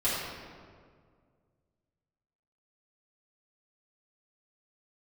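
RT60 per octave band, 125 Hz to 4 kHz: 2.7, 2.3, 2.1, 1.8, 1.5, 1.1 seconds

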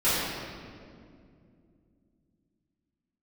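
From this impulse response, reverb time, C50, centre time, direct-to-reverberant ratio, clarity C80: 2.4 s, −3.0 dB, 136 ms, −14.5 dB, −0.5 dB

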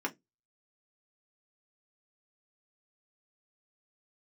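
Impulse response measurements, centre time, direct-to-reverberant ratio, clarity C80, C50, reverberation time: 7 ms, 0.5 dB, 34.0 dB, 23.5 dB, 0.15 s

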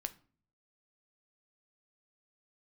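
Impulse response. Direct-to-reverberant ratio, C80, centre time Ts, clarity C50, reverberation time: 9.0 dB, 23.5 dB, 4 ms, 18.0 dB, 0.45 s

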